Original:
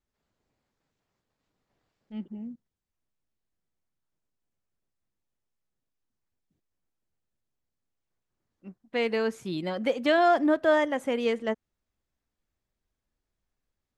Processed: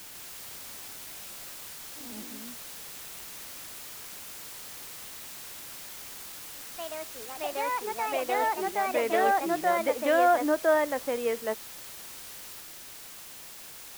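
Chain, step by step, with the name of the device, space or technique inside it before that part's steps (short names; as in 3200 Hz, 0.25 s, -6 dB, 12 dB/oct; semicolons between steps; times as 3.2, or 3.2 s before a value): wax cylinder (BPF 370–2000 Hz; wow and flutter 19 cents; white noise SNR 11 dB); echoes that change speed 0.153 s, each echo +2 st, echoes 3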